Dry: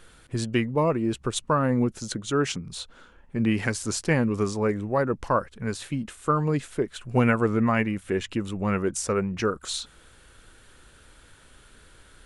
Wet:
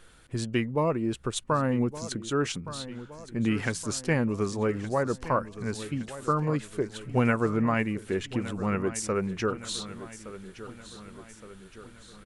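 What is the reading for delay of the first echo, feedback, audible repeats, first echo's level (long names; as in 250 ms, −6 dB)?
1,167 ms, 53%, 4, −14.5 dB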